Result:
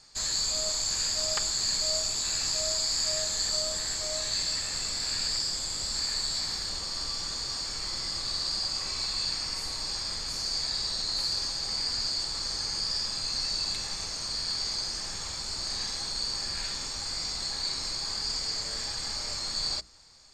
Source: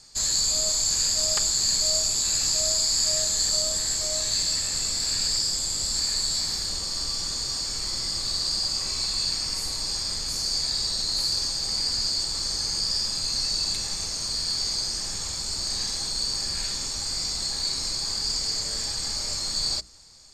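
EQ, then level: tilt shelf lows -5 dB, about 800 Hz; high shelf 2800 Hz -10 dB; high shelf 9200 Hz -9 dB; 0.0 dB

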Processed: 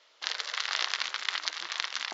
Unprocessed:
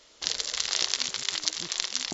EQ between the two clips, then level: HPF 720 Hz 12 dB/oct; dynamic EQ 1400 Hz, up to +8 dB, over -47 dBFS, Q 0.77; air absorption 180 m; 0.0 dB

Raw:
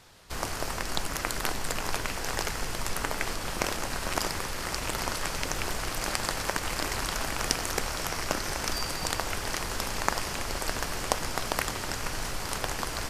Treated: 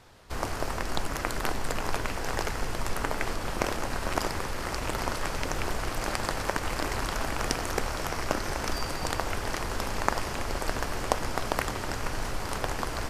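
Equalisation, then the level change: bell 170 Hz -5 dB 0.21 oct; high shelf 2100 Hz -8.5 dB; +3.0 dB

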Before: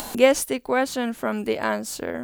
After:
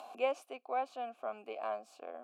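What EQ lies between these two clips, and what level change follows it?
vowel filter a; HPF 200 Hz 24 dB/oct; high shelf 8400 Hz +4 dB; -4.0 dB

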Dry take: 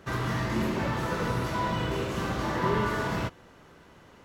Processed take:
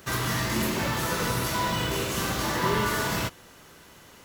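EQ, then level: high shelf 2400 Hz +10.5 dB; high shelf 9200 Hz +12 dB; 0.0 dB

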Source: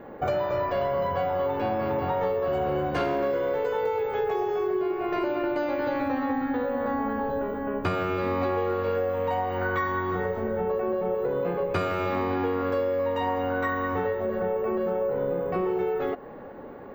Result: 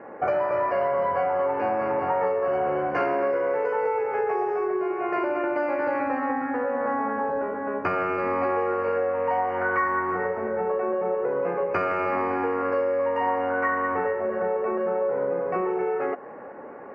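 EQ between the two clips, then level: HPF 700 Hz 6 dB/oct; Butterworth band-stop 3600 Hz, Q 1.5; air absorption 270 m; +7.0 dB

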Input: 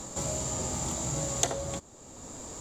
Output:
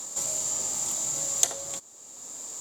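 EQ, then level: RIAA curve recording; -4.5 dB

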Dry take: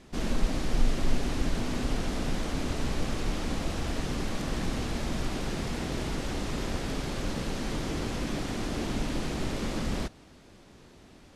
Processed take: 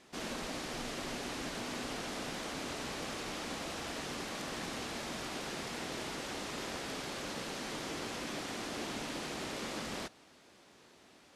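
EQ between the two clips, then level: HPF 580 Hz 6 dB/oct; -2.0 dB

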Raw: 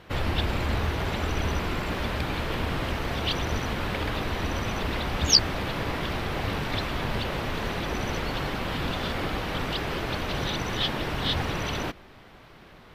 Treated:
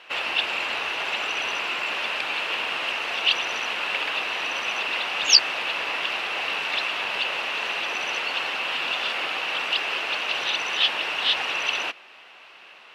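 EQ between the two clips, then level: HPF 720 Hz 12 dB/oct; LPF 8900 Hz 12 dB/oct; bell 2700 Hz +13.5 dB 0.3 oct; +3.0 dB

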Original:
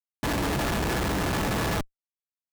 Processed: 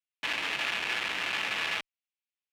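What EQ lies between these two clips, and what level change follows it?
band-pass 2600 Hz, Q 2.5; +7.5 dB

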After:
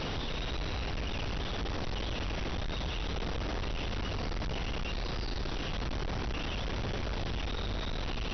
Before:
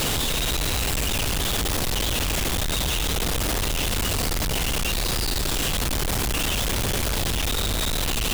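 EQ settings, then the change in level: brick-wall FIR low-pass 6000 Hz; high shelf 3600 Hz -11 dB; -8.5 dB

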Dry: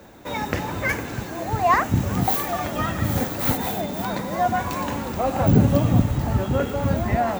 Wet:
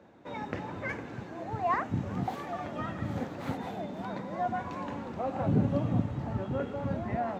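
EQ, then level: HPF 110 Hz 12 dB/oct; tape spacing loss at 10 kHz 22 dB; -8.5 dB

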